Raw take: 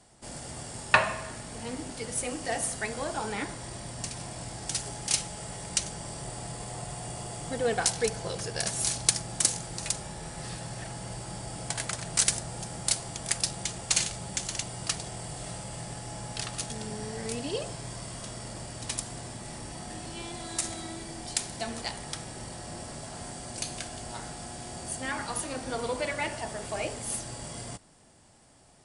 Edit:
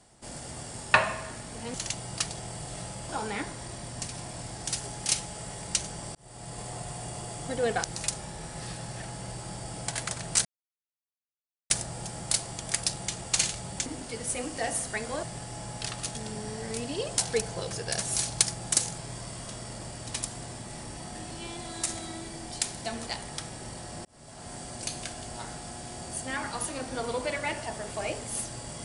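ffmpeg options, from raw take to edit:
ffmpeg -i in.wav -filter_complex "[0:a]asplit=11[link_01][link_02][link_03][link_04][link_05][link_06][link_07][link_08][link_09][link_10][link_11];[link_01]atrim=end=1.742[link_12];[link_02]atrim=start=14.428:end=15.782[link_13];[link_03]atrim=start=3.108:end=6.17,asetpts=PTS-STARTPTS,afade=type=out:start_time=3.058:duration=0.004:curve=hsin[link_14];[link_04]atrim=start=6.17:end=7.862,asetpts=PTS-STARTPTS,afade=type=in:duration=0.45[link_15];[link_05]atrim=start=9.658:end=12.27,asetpts=PTS-STARTPTS,afade=type=out:start_time=2.608:duration=0.004:curve=hsin,apad=pad_dur=1.25[link_16];[link_06]atrim=start=12.27:end=14.432,asetpts=PTS-STARTPTS,afade=type=in:duration=0.004:curve=hsin[link_17];[link_07]atrim=start=1.738:end=3.112[link_18];[link_08]atrim=start=15.778:end=17.732[link_19];[link_09]atrim=start=7.858:end=9.662[link_20];[link_10]atrim=start=17.728:end=22.8,asetpts=PTS-STARTPTS,afade=type=out:start_time=5.068:duration=0.004:curve=hsin[link_21];[link_11]atrim=start=22.8,asetpts=PTS-STARTPTS,afade=type=in:duration=0.54[link_22];[link_12][link_13]acrossfade=duration=0.004:curve1=hsin:curve2=hsin[link_23];[link_14][link_15]concat=n=2:v=0:a=1[link_24];[link_23][link_24]acrossfade=duration=0.004:curve1=hsin:curve2=hsin[link_25];[link_16][link_17]concat=n=2:v=0:a=1[link_26];[link_25][link_26]acrossfade=duration=0.004:curve1=hsin:curve2=hsin[link_27];[link_27][link_18]acrossfade=duration=0.004:curve1=hsin:curve2=hsin[link_28];[link_28][link_19]acrossfade=duration=0.004:curve1=hsin:curve2=hsin[link_29];[link_29][link_20]acrossfade=duration=0.004:curve1=hsin:curve2=hsin[link_30];[link_21][link_22]concat=n=2:v=0:a=1[link_31];[link_30][link_31]acrossfade=duration=0.004:curve1=hsin:curve2=hsin" out.wav

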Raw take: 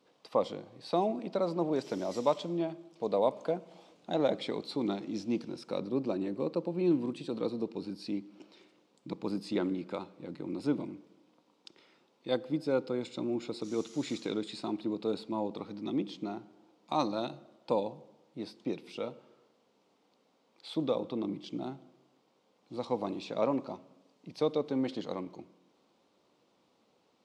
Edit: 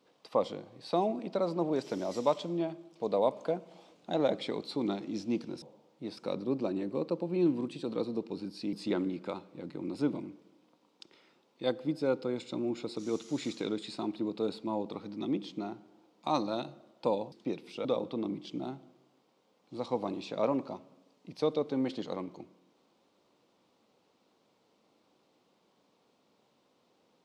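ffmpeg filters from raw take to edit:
ffmpeg -i in.wav -filter_complex "[0:a]asplit=6[link_01][link_02][link_03][link_04][link_05][link_06];[link_01]atrim=end=5.622[link_07];[link_02]atrim=start=17.968:end=18.522[link_08];[link_03]atrim=start=5.618:end=8.182[link_09];[link_04]atrim=start=9.378:end=17.972[link_10];[link_05]atrim=start=18.518:end=19.052[link_11];[link_06]atrim=start=20.838[link_12];[link_07][link_08]acrossfade=duration=0.004:curve1=hsin:curve2=hsin[link_13];[link_13][link_09]acrossfade=duration=0.004:curve1=hsin:curve2=hsin[link_14];[link_14][link_10]acrossfade=duration=0.004:curve1=hsin:curve2=hsin[link_15];[link_15][link_11]acrossfade=duration=0.004:curve1=hsin:curve2=hsin[link_16];[link_16][link_12]acrossfade=duration=0.004:curve1=hsin:curve2=hsin" out.wav

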